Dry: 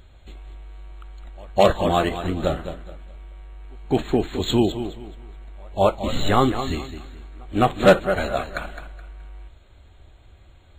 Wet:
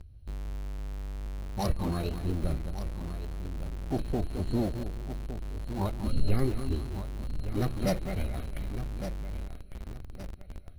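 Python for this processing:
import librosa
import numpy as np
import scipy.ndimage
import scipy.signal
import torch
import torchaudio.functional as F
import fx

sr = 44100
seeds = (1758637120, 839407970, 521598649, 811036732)

p1 = fx.tone_stack(x, sr, knobs='10-0-1')
p2 = p1 + fx.echo_feedback(p1, sr, ms=1161, feedback_pct=33, wet_db=-12, dry=0)
p3 = fx.formant_shift(p2, sr, semitones=6)
p4 = fx.high_shelf(p3, sr, hz=5500.0, db=9.0)
p5 = fx.notch(p4, sr, hz=3500.0, q=5.3)
p6 = fx.schmitt(p5, sr, flips_db=-48.0)
p7 = p5 + (p6 * librosa.db_to_amplitude(-9.0))
y = p7 * librosa.db_to_amplitude(6.0)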